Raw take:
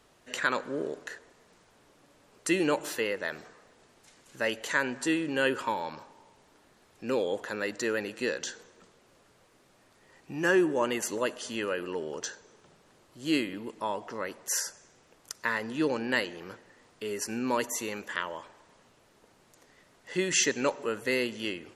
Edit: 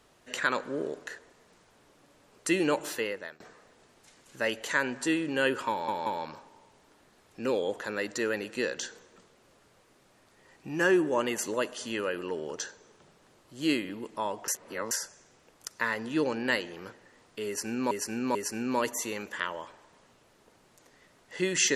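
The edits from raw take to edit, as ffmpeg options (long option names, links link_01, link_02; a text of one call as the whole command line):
ffmpeg -i in.wav -filter_complex "[0:a]asplit=8[link_01][link_02][link_03][link_04][link_05][link_06][link_07][link_08];[link_01]atrim=end=3.4,asetpts=PTS-STARTPTS,afade=type=out:start_time=2.8:duration=0.6:curve=qsin:silence=0.0707946[link_09];[link_02]atrim=start=3.4:end=5.882,asetpts=PTS-STARTPTS,afade=type=in:duration=0.004:curve=hsin:silence=0.0707946[link_10];[link_03]atrim=start=5.698:end=5.882[link_11];[link_04]atrim=start=5.698:end=14.122[link_12];[link_05]atrim=start=14.118:end=14.552,asetpts=PTS-STARTPTS,areverse[link_13];[link_06]atrim=start=14.548:end=17.552[link_14];[link_07]atrim=start=17.108:end=17.552[link_15];[link_08]atrim=start=17.108[link_16];[link_09][link_10]concat=n=2:v=0:a=1[link_17];[link_17][link_11]acrossfade=duration=0.004:curve1=hsin:curve2=hsin[link_18];[link_18][link_12]acrossfade=duration=0.004:curve1=hsin:curve2=hsin[link_19];[link_19][link_13]acrossfade=duration=0.004:curve1=hsin:curve2=hsin[link_20];[link_20][link_14]acrossfade=duration=0.004:curve1=hsin:curve2=hsin[link_21];[link_21][link_15]acrossfade=duration=0.004:curve1=hsin:curve2=hsin[link_22];[link_22][link_16]acrossfade=duration=0.004:curve1=hsin:curve2=hsin" out.wav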